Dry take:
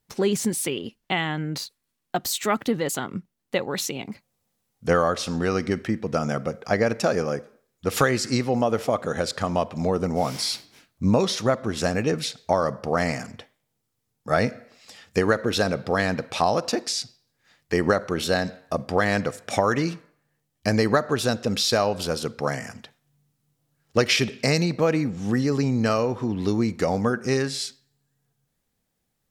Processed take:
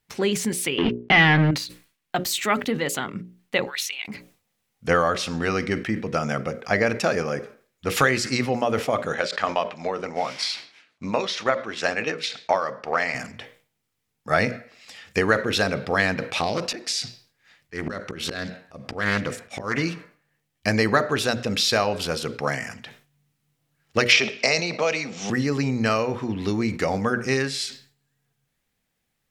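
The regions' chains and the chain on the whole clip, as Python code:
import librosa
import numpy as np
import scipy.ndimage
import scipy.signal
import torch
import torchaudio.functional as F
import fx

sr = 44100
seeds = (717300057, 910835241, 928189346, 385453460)

y = fx.chain(x, sr, fx.leveller(passes=5),
    fx.air_absorb(metres=310.0), at=(0.78, 1.51))
y = fx.chain(y, sr, fx.cheby1_highpass(hz=1900.0, order=2),
    fx.notch(hz=7400.0, q=14.0), at=(3.65, 4.08))
y = fx.chain(y, sr, fx.highpass(hz=740.0, slope=6),
    fx.air_absorb(metres=85.0),
    fx.transient(attack_db=6, sustain_db=-1), at=(9.14, 13.15))
y = fx.chain(y, sr, fx.dynamic_eq(hz=870.0, q=1.0, threshold_db=-32.0, ratio=4.0, max_db=-6),
    fx.auto_swell(attack_ms=165.0),
    fx.doppler_dist(depth_ms=0.36), at=(16.39, 19.78))
y = fx.chain(y, sr, fx.cabinet(low_hz=300.0, low_slope=12, high_hz=7200.0, hz=(300.0, 660.0, 1700.0, 5700.0), db=(-9, 5, -6, 4)),
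    fx.band_squash(depth_pct=70), at=(24.12, 25.3))
y = fx.peak_eq(y, sr, hz=2300.0, db=7.5, octaves=1.4)
y = fx.hum_notches(y, sr, base_hz=60, count=10)
y = fx.sustainer(y, sr, db_per_s=140.0)
y = y * 10.0 ** (-1.0 / 20.0)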